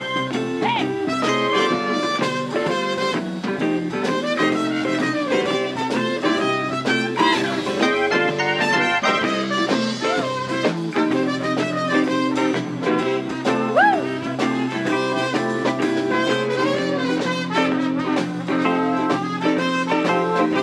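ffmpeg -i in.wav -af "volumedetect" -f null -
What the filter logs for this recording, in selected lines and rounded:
mean_volume: -20.5 dB
max_volume: -4.0 dB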